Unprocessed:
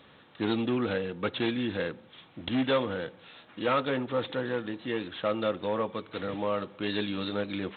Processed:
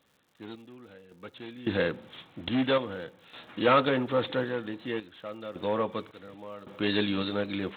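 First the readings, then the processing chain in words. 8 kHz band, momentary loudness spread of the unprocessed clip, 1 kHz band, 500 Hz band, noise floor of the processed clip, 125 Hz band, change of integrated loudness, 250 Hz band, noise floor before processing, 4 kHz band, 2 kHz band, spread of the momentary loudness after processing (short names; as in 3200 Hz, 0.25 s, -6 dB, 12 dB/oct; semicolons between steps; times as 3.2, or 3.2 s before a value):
n/a, 8 LU, +2.0 dB, +0.5 dB, -64 dBFS, 0.0 dB, +2.0 dB, -0.5 dB, -56 dBFS, +1.0 dB, +1.0 dB, 21 LU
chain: random-step tremolo 1.8 Hz, depth 95%; crackle 170/s -59 dBFS; gain +5 dB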